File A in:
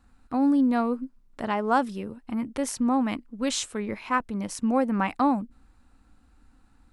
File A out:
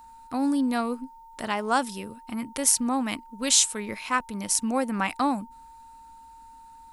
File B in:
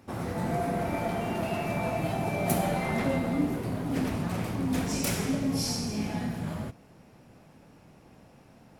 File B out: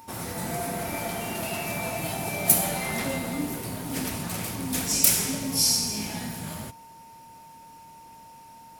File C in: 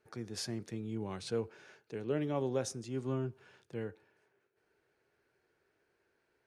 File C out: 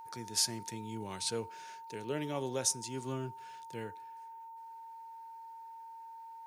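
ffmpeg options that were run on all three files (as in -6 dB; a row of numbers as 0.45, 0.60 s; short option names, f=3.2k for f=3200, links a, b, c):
-af "aeval=exprs='val(0)+0.00562*sin(2*PI*910*n/s)':c=same,crystalizer=i=6:c=0,volume=-3.5dB"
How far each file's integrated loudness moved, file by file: +1.0, +4.0, +2.0 LU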